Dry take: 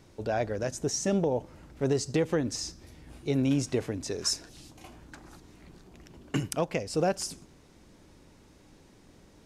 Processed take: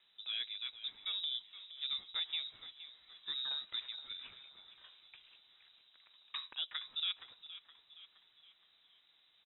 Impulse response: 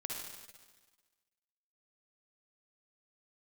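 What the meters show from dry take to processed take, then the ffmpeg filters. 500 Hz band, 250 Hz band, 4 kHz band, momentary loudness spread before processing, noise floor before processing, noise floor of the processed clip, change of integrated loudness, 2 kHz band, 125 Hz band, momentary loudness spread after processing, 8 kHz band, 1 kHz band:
below −40 dB, below −40 dB, +2.5 dB, 22 LU, −57 dBFS, −70 dBFS, −9.5 dB, −9.5 dB, below −40 dB, 20 LU, below −40 dB, −20.0 dB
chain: -filter_complex "[0:a]lowshelf=frequency=290:gain=-9.5,lowpass=frequency=3400:width_type=q:width=0.5098,lowpass=frequency=3400:width_type=q:width=0.6013,lowpass=frequency=3400:width_type=q:width=0.9,lowpass=frequency=3400:width_type=q:width=2.563,afreqshift=-4000,asplit=5[link_01][link_02][link_03][link_04][link_05];[link_02]adelay=469,afreqshift=-50,volume=-14dB[link_06];[link_03]adelay=938,afreqshift=-100,volume=-20.7dB[link_07];[link_04]adelay=1407,afreqshift=-150,volume=-27.5dB[link_08];[link_05]adelay=1876,afreqshift=-200,volume=-34.2dB[link_09];[link_01][link_06][link_07][link_08][link_09]amix=inputs=5:normalize=0,volume=-9dB"

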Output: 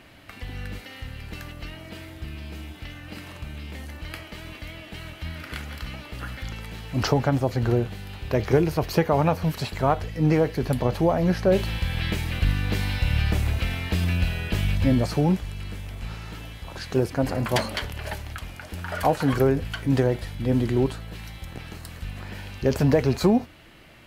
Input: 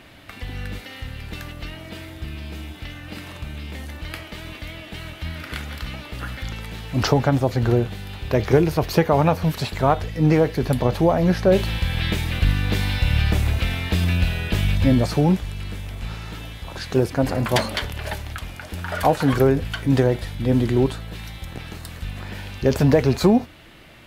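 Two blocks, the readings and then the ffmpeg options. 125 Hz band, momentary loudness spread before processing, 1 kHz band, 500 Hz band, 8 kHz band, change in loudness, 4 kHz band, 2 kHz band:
−3.5 dB, 17 LU, −3.5 dB, −3.5 dB, −3.5 dB, −3.5 dB, −4.5 dB, −3.5 dB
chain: -af "bandreject=frequency=3600:width=17,volume=-3.5dB"

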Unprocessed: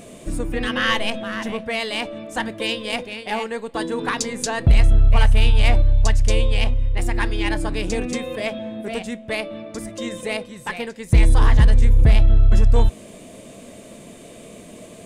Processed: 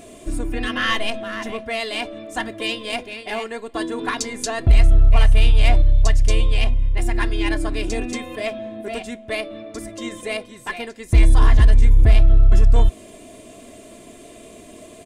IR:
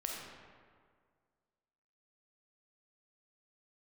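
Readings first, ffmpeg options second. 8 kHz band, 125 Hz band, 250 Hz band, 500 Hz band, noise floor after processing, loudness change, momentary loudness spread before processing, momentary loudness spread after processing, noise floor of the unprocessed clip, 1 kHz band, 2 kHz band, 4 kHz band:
−1.0 dB, 0.0 dB, −1.5 dB, −1.0 dB, −43 dBFS, +0.5 dB, 17 LU, 15 LU, −42 dBFS, −1.0 dB, −0.5 dB, −1.0 dB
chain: -af "aecho=1:1:2.9:0.59,volume=-2dB"

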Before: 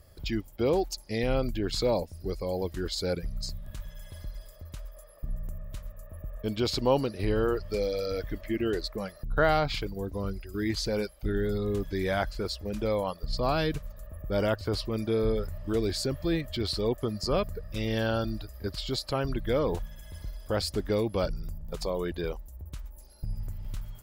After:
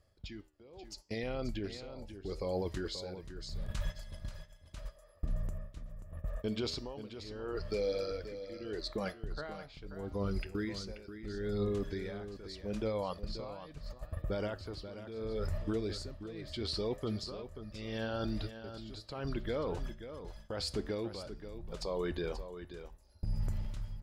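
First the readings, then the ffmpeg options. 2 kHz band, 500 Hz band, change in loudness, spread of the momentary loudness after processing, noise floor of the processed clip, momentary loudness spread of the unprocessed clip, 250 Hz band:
−10.5 dB, −9.0 dB, −9.0 dB, 12 LU, −59 dBFS, 16 LU, −8.5 dB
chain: -af "lowpass=7800,agate=range=-21dB:threshold=-39dB:ratio=16:detection=peak,lowshelf=frequency=170:gain=-3.5,areverse,acompressor=threshold=-40dB:ratio=12,areverse,alimiter=level_in=18.5dB:limit=-24dB:level=0:latency=1:release=203,volume=-18.5dB,dynaudnorm=framelen=630:gausssize=3:maxgain=6.5dB,tremolo=f=0.77:d=0.89,flanger=delay=9:depth=5.1:regen=83:speed=0.7:shape=sinusoidal,aecho=1:1:533:0.282,volume=14.5dB"

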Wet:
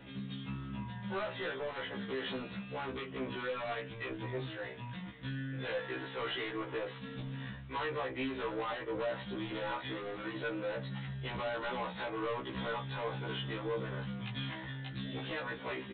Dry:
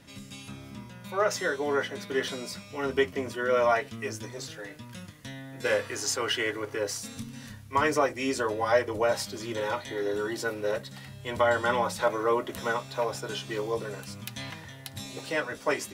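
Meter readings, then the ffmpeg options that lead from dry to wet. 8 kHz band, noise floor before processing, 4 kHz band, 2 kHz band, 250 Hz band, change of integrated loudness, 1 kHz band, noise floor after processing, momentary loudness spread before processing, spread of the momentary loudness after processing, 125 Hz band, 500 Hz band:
below −40 dB, −47 dBFS, −7.0 dB, −8.5 dB, −4.5 dB, −9.5 dB, −10.0 dB, −46 dBFS, 17 LU, 5 LU, −0.5 dB, −11.0 dB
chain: -af "acompressor=threshold=-30dB:ratio=3,aresample=8000,asoftclip=type=tanh:threshold=-36.5dB,aresample=44100,afftfilt=real='re*1.73*eq(mod(b,3),0)':imag='im*1.73*eq(mod(b,3),0)':win_size=2048:overlap=0.75,volume=4.5dB"

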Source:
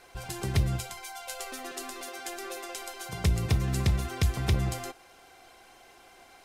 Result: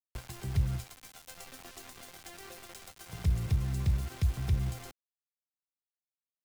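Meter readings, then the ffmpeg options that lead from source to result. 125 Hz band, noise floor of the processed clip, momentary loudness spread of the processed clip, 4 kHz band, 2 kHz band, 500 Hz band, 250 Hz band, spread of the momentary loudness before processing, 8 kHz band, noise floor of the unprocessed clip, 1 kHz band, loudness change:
−3.0 dB, below −85 dBFS, 17 LU, −10.0 dB, −10.5 dB, −12.0 dB, −7.0 dB, 12 LU, −9.5 dB, −56 dBFS, −11.5 dB, −1.5 dB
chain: -filter_complex "[0:a]acrusher=bits=5:mix=0:aa=0.000001,acrossover=split=170[link_01][link_02];[link_02]acompressor=threshold=-50dB:ratio=2[link_03];[link_01][link_03]amix=inputs=2:normalize=0,volume=-2dB"

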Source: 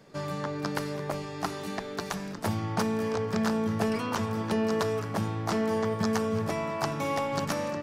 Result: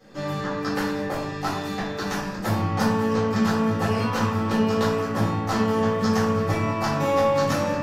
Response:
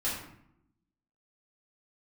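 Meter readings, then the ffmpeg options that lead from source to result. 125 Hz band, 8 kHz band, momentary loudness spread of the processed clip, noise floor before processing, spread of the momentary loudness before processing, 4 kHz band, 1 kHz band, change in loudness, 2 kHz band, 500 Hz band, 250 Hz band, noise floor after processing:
+7.0 dB, +3.0 dB, 7 LU, −38 dBFS, 7 LU, +5.5 dB, +7.0 dB, +6.5 dB, +6.5 dB, +6.0 dB, +6.5 dB, −31 dBFS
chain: -filter_complex "[0:a]equalizer=frequency=9400:width=4.6:gain=-7.5[link_01];[1:a]atrim=start_sample=2205[link_02];[link_01][link_02]afir=irnorm=-1:irlink=0"

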